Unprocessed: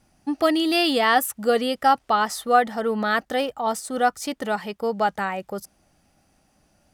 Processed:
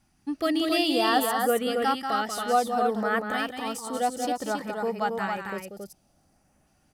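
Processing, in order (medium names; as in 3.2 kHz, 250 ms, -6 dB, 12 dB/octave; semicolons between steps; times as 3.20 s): LFO notch saw up 0.6 Hz 460–5400 Hz; on a send: loudspeakers at several distances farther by 64 m -7 dB, 94 m -4 dB; on the sum: trim -4.5 dB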